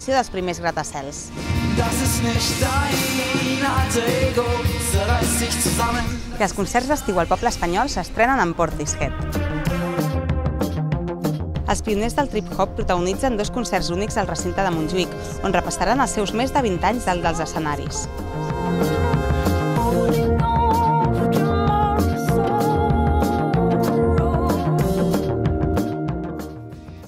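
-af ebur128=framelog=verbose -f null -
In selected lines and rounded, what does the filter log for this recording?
Integrated loudness:
  I:         -20.9 LUFS
  Threshold: -31.0 LUFS
Loudness range:
  LRA:         3.7 LU
  Threshold: -40.8 LUFS
  LRA low:   -22.7 LUFS
  LRA high:  -19.0 LUFS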